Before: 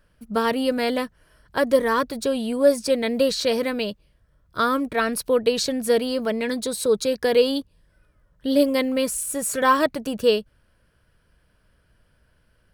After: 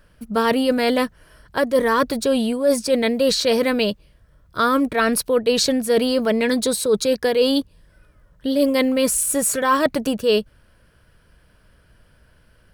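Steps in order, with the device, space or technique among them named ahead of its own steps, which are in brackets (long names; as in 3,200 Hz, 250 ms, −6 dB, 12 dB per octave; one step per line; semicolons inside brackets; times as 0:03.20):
compression on the reversed sound (reversed playback; downward compressor 6 to 1, threshold −22 dBFS, peak gain reduction 11 dB; reversed playback)
level +7.5 dB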